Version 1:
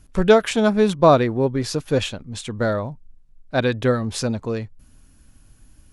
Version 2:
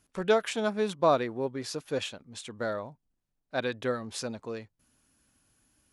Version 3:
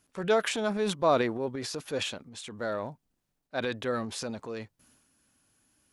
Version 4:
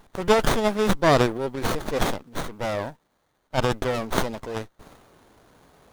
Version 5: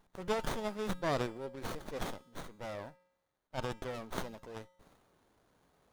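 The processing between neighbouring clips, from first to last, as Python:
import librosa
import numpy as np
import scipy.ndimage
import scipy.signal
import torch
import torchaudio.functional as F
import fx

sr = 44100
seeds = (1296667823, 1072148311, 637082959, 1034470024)

y1 = fx.highpass(x, sr, hz=360.0, slope=6)
y1 = y1 * 10.0 ** (-8.5 / 20.0)
y2 = fx.low_shelf(y1, sr, hz=72.0, db=-9.5)
y2 = fx.transient(y2, sr, attack_db=-2, sustain_db=7)
y3 = fx.riaa(y2, sr, side='recording')
y3 = fx.running_max(y3, sr, window=17)
y3 = y3 * 10.0 ** (8.0 / 20.0)
y4 = fx.comb_fb(y3, sr, f0_hz=180.0, decay_s=0.8, harmonics='odd', damping=0.0, mix_pct=60)
y4 = y4 * 10.0 ** (-7.5 / 20.0)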